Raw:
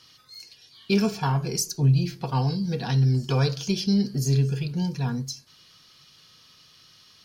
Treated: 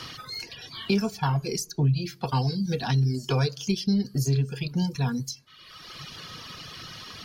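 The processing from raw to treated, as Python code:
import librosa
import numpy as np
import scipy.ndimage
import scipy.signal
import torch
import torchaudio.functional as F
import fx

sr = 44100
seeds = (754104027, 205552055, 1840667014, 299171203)

y = fx.dereverb_blind(x, sr, rt60_s=0.91)
y = fx.band_squash(y, sr, depth_pct=70)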